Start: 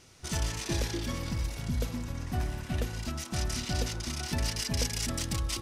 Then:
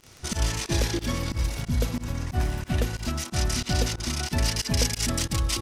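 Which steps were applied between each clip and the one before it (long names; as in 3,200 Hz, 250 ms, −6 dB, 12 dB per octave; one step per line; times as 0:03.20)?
fake sidechain pumping 91 BPM, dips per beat 2, −24 dB, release 92 ms
surface crackle 18 per second −39 dBFS
level +6.5 dB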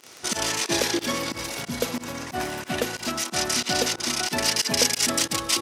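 high-pass filter 310 Hz 12 dB per octave
level +6 dB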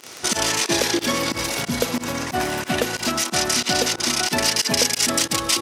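downward compressor 2 to 1, threshold −27 dBFS, peak gain reduction 7 dB
level +7.5 dB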